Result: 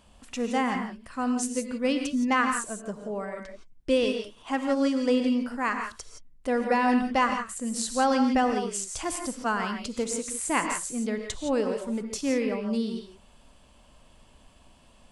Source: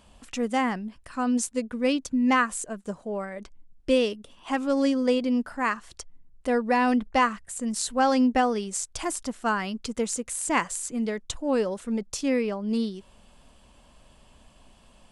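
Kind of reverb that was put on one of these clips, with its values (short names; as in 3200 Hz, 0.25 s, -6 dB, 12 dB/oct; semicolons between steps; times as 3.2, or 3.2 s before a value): non-linear reverb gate 0.19 s rising, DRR 4.5 dB; gain -2 dB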